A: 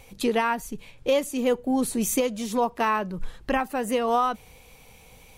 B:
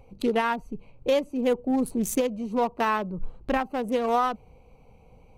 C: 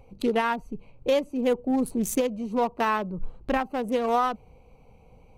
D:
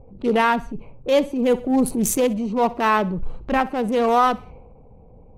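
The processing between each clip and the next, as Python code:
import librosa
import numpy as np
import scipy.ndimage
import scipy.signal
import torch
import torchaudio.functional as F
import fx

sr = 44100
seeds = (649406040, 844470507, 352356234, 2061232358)

y1 = fx.wiener(x, sr, points=25)
y2 = y1
y3 = fx.env_lowpass(y2, sr, base_hz=550.0, full_db=-24.5)
y3 = fx.echo_feedback(y3, sr, ms=63, feedback_pct=39, wet_db=-22.0)
y3 = fx.transient(y3, sr, attack_db=-8, sustain_db=3)
y3 = y3 * librosa.db_to_amplitude(7.5)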